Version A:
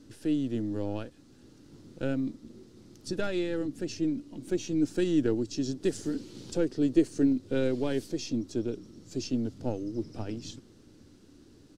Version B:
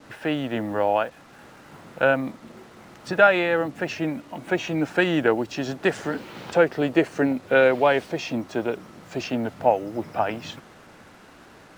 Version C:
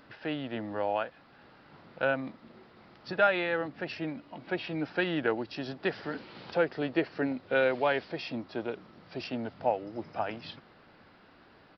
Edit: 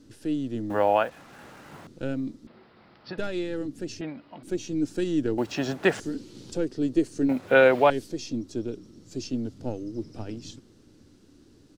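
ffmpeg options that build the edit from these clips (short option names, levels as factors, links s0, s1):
-filter_complex "[1:a]asplit=3[s0][s1][s2];[2:a]asplit=2[s3][s4];[0:a]asplit=6[s5][s6][s7][s8][s9][s10];[s5]atrim=end=0.702[s11];[s0]atrim=start=0.698:end=1.872[s12];[s6]atrim=start=1.868:end=2.472[s13];[s3]atrim=start=2.468:end=3.182[s14];[s7]atrim=start=3.178:end=4.012[s15];[s4]atrim=start=4.008:end=4.432[s16];[s8]atrim=start=4.428:end=5.382[s17];[s1]atrim=start=5.378:end=6.002[s18];[s9]atrim=start=5.998:end=7.292[s19];[s2]atrim=start=7.288:end=7.902[s20];[s10]atrim=start=7.898[s21];[s11][s12]acrossfade=d=0.004:c1=hsin:c2=hsin[s22];[s22][s13]acrossfade=d=0.004:c1=hsin:c2=hsin[s23];[s23][s14]acrossfade=d=0.004:c1=hsin:c2=hsin[s24];[s24][s15]acrossfade=d=0.004:c1=hsin:c2=hsin[s25];[s25][s16]acrossfade=d=0.004:c1=hsin:c2=hsin[s26];[s26][s17]acrossfade=d=0.004:c1=hsin:c2=hsin[s27];[s27][s18]acrossfade=d=0.004:c1=hsin:c2=hsin[s28];[s28][s19]acrossfade=d=0.004:c1=hsin:c2=hsin[s29];[s29][s20]acrossfade=d=0.004:c1=hsin:c2=hsin[s30];[s30][s21]acrossfade=d=0.004:c1=hsin:c2=hsin"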